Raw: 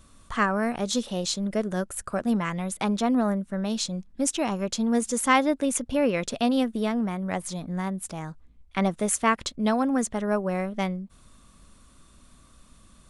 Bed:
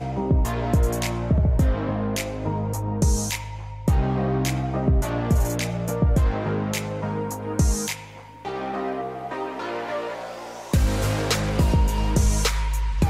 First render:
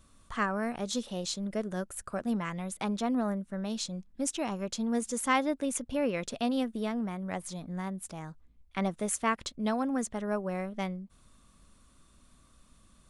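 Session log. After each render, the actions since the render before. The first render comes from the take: trim -6.5 dB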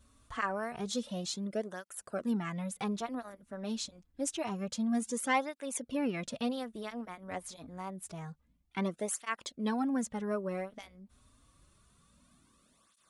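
cancelling through-zero flanger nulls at 0.27 Hz, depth 6.2 ms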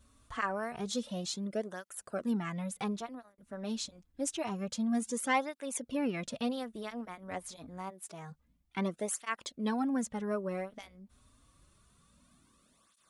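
2.87–3.38 s: fade out; 7.89–8.30 s: high-pass 500 Hz -> 160 Hz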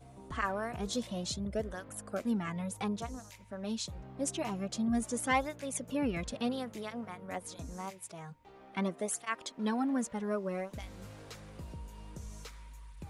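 add bed -26 dB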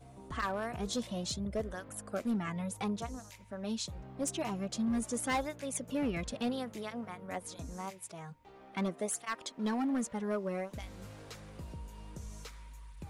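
overload inside the chain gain 27.5 dB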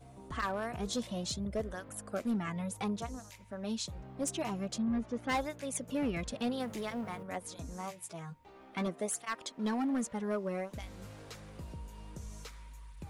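4.78–5.29 s: distance through air 290 m; 6.60–7.23 s: companding laws mixed up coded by mu; 7.82–8.87 s: doubling 12 ms -6 dB

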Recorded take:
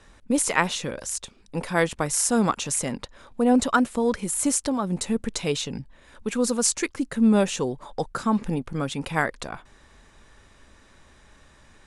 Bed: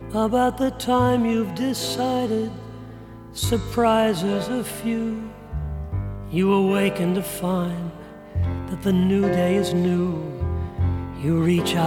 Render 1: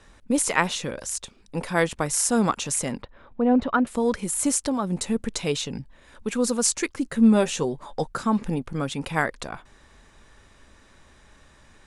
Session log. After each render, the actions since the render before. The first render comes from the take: 3.02–3.87 s: distance through air 380 m; 7.04–8.10 s: doubling 13 ms -8 dB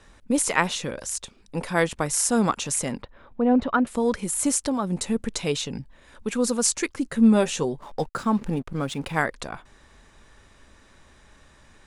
7.81–9.19 s: hysteresis with a dead band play -41.5 dBFS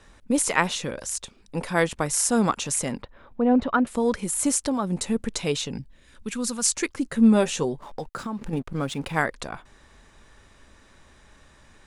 5.78–6.75 s: peaking EQ 1.2 kHz -> 350 Hz -11 dB 1.8 oct; 7.79–8.53 s: compression 10:1, threshold -27 dBFS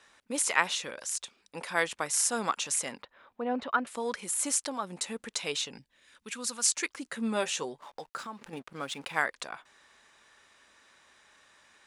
high-pass 1.4 kHz 6 dB/octave; treble shelf 5.8 kHz -5 dB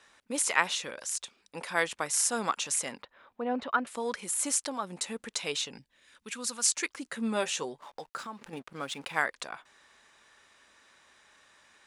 no audible change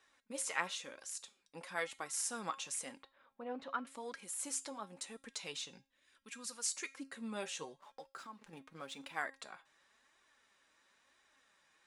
feedback comb 270 Hz, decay 0.33 s, harmonics all, mix 60%; flange 0.98 Hz, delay 2.5 ms, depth 4.1 ms, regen +47%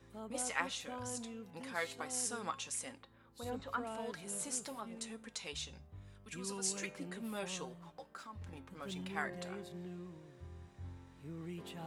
add bed -26.5 dB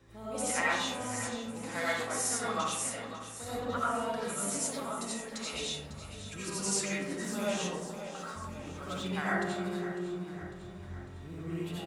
feedback delay 550 ms, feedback 54%, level -12.5 dB; algorithmic reverb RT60 0.98 s, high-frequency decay 0.35×, pre-delay 45 ms, DRR -7.5 dB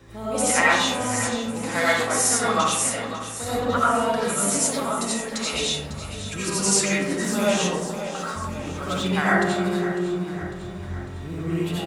trim +11.5 dB

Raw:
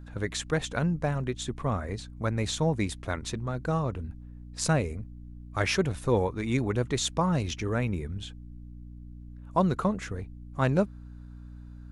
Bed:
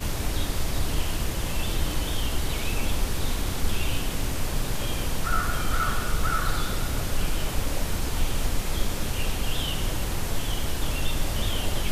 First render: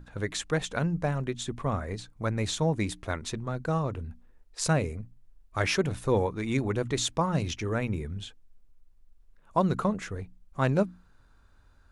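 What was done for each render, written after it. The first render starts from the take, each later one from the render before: hum notches 60/120/180/240/300 Hz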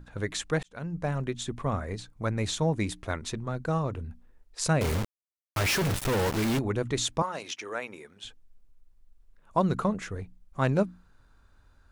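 0.63–1.16 s: fade in; 4.81–6.59 s: companded quantiser 2-bit; 7.22–8.24 s: high-pass 550 Hz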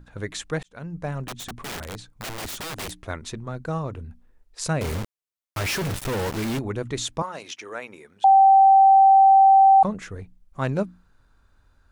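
1.27–2.91 s: integer overflow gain 28 dB; 8.24–9.83 s: bleep 777 Hz -10 dBFS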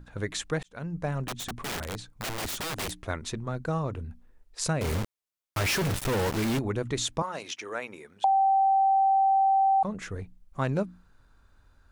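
compression 3:1, threshold -24 dBFS, peak gain reduction 9 dB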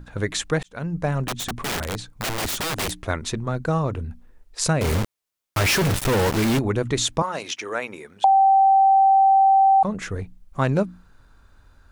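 trim +7 dB

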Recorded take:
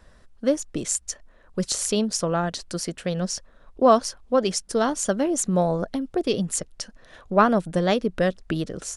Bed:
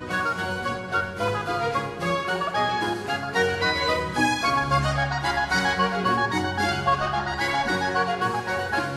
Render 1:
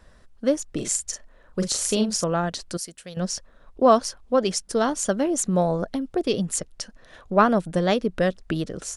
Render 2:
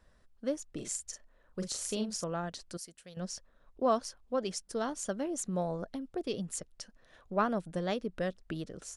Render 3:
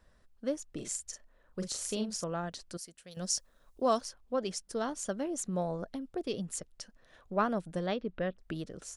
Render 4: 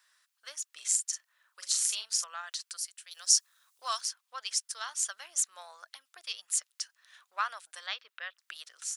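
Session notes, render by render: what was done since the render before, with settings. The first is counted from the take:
0.68–2.24 s: doubling 42 ms -6 dB; 2.77–3.17 s: pre-emphasis filter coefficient 0.8
trim -12 dB
3.11–4.01 s: tone controls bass -1 dB, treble +13 dB; 7.86–8.38 s: low-pass 5 kHz -> 2.9 kHz 24 dB/octave
high-pass 1.1 kHz 24 dB/octave; treble shelf 2.2 kHz +10.5 dB

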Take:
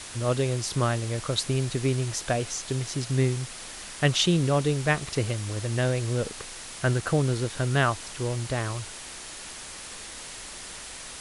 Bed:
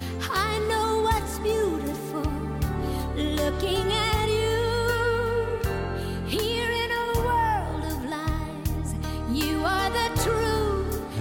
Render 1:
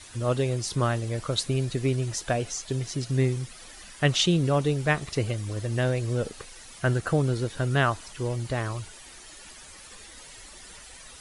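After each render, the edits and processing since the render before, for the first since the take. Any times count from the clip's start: noise reduction 11 dB, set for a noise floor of -41 dBFS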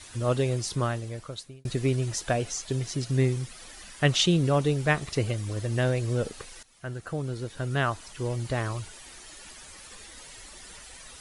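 0.56–1.65 s: fade out; 6.63–8.52 s: fade in, from -17 dB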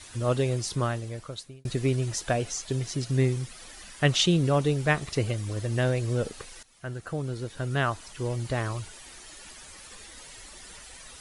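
no audible change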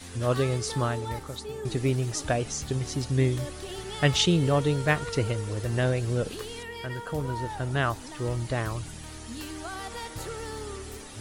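add bed -13 dB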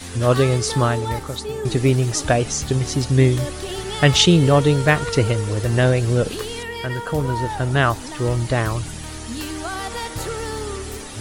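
trim +9 dB; peak limiter -2 dBFS, peak gain reduction 2 dB

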